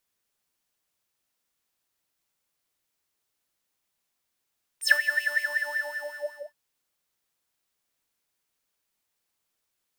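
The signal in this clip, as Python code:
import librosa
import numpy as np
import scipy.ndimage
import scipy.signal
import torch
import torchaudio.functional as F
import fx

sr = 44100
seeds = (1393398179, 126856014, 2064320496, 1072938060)

y = fx.sub_patch_wobble(sr, seeds[0], note=74, wave='triangle', wave2='square', interval_st=19, level2_db=-10, sub_db=-16.0, noise_db=-17.5, kind='highpass', cutoff_hz=760.0, q=11.0, env_oct=3.5, env_decay_s=0.11, env_sustain_pct=35, attack_ms=74.0, decay_s=0.11, sustain_db=-10.0, release_s=1.29, note_s=0.43, lfo_hz=5.4, wobble_oct=0.6)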